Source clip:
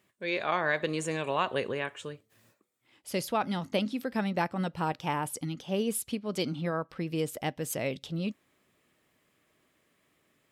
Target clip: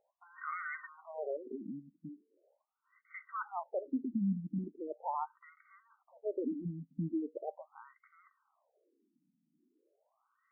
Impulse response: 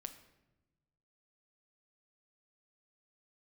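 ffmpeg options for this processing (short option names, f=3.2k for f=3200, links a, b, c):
-af "alimiter=level_in=1dB:limit=-24dB:level=0:latency=1:release=48,volume=-1dB,asuperstop=centerf=1700:order=12:qfactor=7.1,afftfilt=real='re*between(b*sr/1024,210*pow(1600/210,0.5+0.5*sin(2*PI*0.4*pts/sr))/1.41,210*pow(1600/210,0.5+0.5*sin(2*PI*0.4*pts/sr))*1.41)':imag='im*between(b*sr/1024,210*pow(1600/210,0.5+0.5*sin(2*PI*0.4*pts/sr))/1.41,210*pow(1600/210,0.5+0.5*sin(2*PI*0.4*pts/sr))*1.41)':win_size=1024:overlap=0.75,volume=2dB"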